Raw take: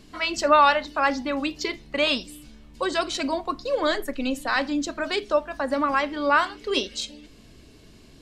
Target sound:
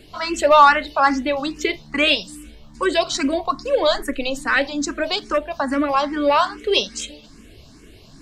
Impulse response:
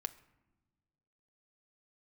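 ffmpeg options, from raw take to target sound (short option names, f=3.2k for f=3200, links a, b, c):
-filter_complex "[0:a]acrossover=split=1100[a][b];[a]asoftclip=type=hard:threshold=-17dB[c];[c][b]amix=inputs=2:normalize=0,asplit=2[d][e];[e]afreqshift=2.4[f];[d][f]amix=inputs=2:normalize=1,volume=8dB"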